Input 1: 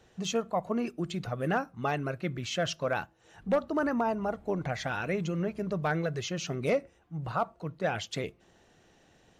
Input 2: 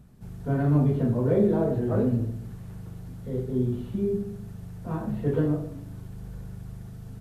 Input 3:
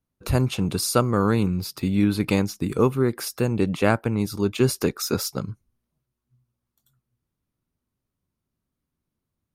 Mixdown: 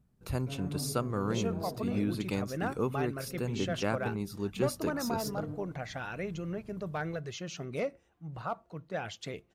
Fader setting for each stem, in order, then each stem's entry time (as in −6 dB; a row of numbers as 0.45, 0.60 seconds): −6.0, −16.5, −12.0 decibels; 1.10, 0.00, 0.00 seconds